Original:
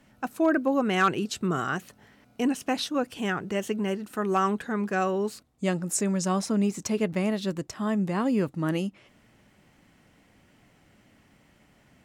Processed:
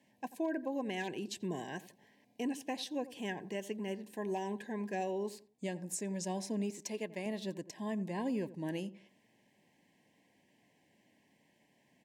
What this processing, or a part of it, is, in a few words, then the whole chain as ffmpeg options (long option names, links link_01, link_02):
PA system with an anti-feedback notch: -filter_complex "[0:a]asettb=1/sr,asplit=3[link_01][link_02][link_03];[link_01]atrim=end=6.704[link_04];[link_02]atrim=start=6.7:end=7.26,asetpts=PTS-STARTPTS,afade=type=in:duration=0.004:curve=qsin,afade=type=out:start_time=0.556:duration=0.004:curve=qsin,lowshelf=frequency=210:gain=-11.5[link_05];[link_03]atrim=start=7.256[link_06];[link_04][link_05]acrossfade=duration=0.004:curve1=hsin:curve2=qsin[link_07];[link_07][link_06]acrossfade=duration=0.004:curve1=qsin:curve2=hsin,highpass=180,asuperstop=centerf=1300:order=20:qfactor=2.6,asplit=2[link_08][link_09];[link_09]adelay=87,lowpass=frequency=1000:poles=1,volume=-15dB,asplit=2[link_10][link_11];[link_11]adelay=87,lowpass=frequency=1000:poles=1,volume=0.32,asplit=2[link_12][link_13];[link_13]adelay=87,lowpass=frequency=1000:poles=1,volume=0.32[link_14];[link_08][link_10][link_12][link_14]amix=inputs=4:normalize=0,alimiter=limit=-18dB:level=0:latency=1:release=292,volume=-9dB"